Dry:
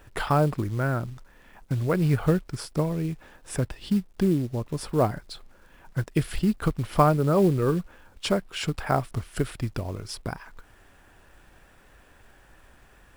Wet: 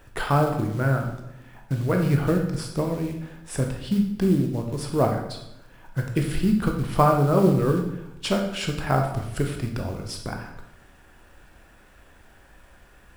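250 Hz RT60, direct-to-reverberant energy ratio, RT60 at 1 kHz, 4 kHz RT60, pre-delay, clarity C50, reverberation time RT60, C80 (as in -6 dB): 1.1 s, 2.5 dB, 0.80 s, 0.70 s, 15 ms, 6.0 dB, 0.85 s, 9.0 dB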